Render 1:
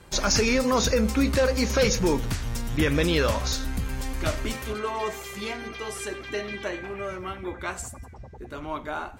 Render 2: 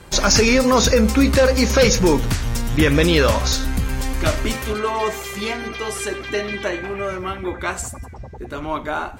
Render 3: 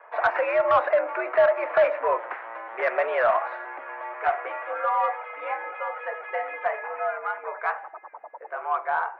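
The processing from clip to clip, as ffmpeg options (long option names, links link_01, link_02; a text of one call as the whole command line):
ffmpeg -i in.wav -af "acontrast=44,volume=2dB" out.wav
ffmpeg -i in.wav -af "tiltshelf=frequency=1400:gain=7.5,highpass=frequency=590:width_type=q:width=0.5412,highpass=frequency=590:width_type=q:width=1.307,lowpass=frequency=2100:width_type=q:width=0.5176,lowpass=frequency=2100:width_type=q:width=0.7071,lowpass=frequency=2100:width_type=q:width=1.932,afreqshift=94,acontrast=48,volume=-8dB" out.wav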